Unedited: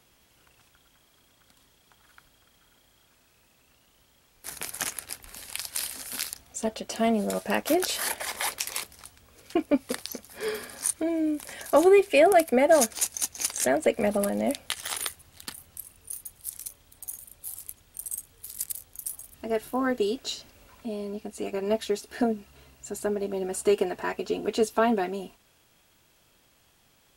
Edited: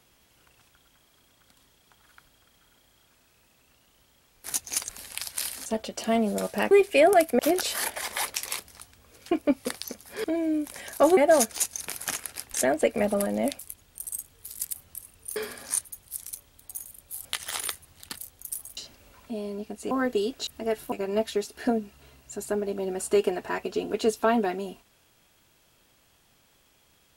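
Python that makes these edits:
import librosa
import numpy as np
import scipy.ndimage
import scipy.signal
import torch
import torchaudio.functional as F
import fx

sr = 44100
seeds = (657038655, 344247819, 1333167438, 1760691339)

y = fx.edit(x, sr, fx.swap(start_s=4.54, length_s=0.73, other_s=13.22, other_length_s=0.35),
    fx.cut(start_s=6.04, length_s=0.54),
    fx.move(start_s=10.48, length_s=0.49, to_s=16.18),
    fx.move(start_s=11.9, length_s=0.68, to_s=7.63),
    fx.swap(start_s=14.62, length_s=0.93, other_s=17.58, other_length_s=1.14),
    fx.swap(start_s=19.31, length_s=0.45, other_s=20.32, other_length_s=1.14), tone=tone)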